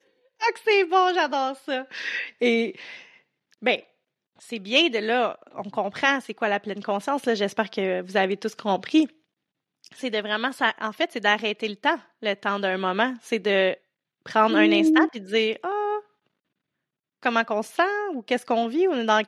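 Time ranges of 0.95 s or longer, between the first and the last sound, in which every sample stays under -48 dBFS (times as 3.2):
16.01–17.23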